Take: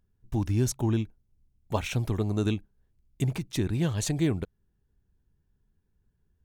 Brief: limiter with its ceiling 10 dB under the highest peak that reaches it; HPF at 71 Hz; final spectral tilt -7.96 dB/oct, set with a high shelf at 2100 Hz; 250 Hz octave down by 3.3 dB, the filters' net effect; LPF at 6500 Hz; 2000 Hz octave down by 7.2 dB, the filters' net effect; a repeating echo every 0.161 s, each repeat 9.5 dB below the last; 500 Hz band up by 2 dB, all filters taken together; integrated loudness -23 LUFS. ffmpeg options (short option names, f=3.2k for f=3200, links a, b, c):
-af "highpass=71,lowpass=6.5k,equalizer=f=250:t=o:g=-7,equalizer=f=500:t=o:g=6.5,equalizer=f=2k:t=o:g=-5.5,highshelf=f=2.1k:g=-6.5,alimiter=limit=-21.5dB:level=0:latency=1,aecho=1:1:161|322|483|644:0.335|0.111|0.0365|0.012,volume=9.5dB"